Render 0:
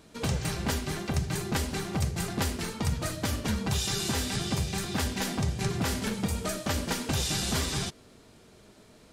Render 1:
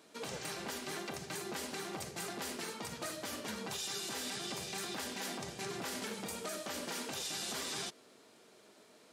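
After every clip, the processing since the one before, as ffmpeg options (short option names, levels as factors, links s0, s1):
-af "highpass=320,alimiter=level_in=1.41:limit=0.0631:level=0:latency=1:release=57,volume=0.708,volume=0.668"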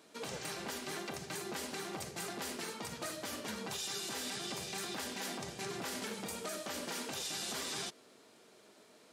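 -af anull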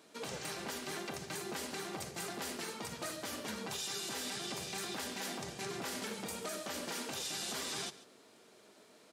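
-af "aecho=1:1:140:0.133"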